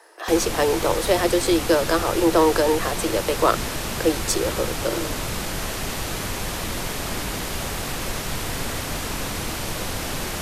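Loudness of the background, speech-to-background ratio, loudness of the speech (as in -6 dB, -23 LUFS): -27.5 LUFS, 5.5 dB, -22.0 LUFS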